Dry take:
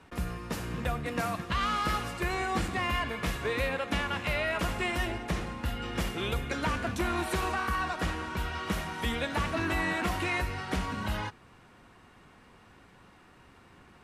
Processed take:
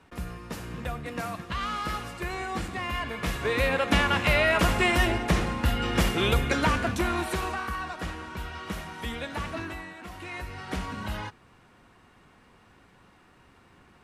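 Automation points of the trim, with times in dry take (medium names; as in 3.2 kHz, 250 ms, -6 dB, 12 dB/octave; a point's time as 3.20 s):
2.86 s -2 dB
3.92 s +8 dB
6.47 s +8 dB
7.82 s -3 dB
9.57 s -3 dB
9.94 s -14 dB
10.72 s -1 dB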